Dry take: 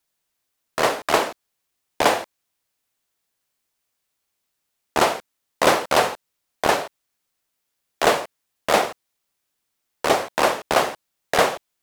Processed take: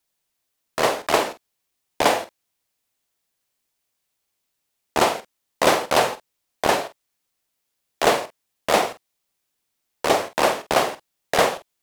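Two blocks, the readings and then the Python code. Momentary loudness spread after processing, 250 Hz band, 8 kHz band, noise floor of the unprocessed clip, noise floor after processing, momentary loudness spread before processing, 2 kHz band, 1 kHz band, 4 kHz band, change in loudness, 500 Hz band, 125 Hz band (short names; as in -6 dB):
13 LU, +0.5 dB, 0.0 dB, -77 dBFS, -77 dBFS, 12 LU, -1.0 dB, -0.5 dB, 0.0 dB, 0.0 dB, 0.0 dB, 0.0 dB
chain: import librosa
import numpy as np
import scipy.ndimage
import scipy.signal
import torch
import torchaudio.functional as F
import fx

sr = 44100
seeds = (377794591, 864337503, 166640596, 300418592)

y = fx.peak_eq(x, sr, hz=1400.0, db=-2.5, octaves=0.77)
y = fx.doubler(y, sr, ms=47.0, db=-12.0)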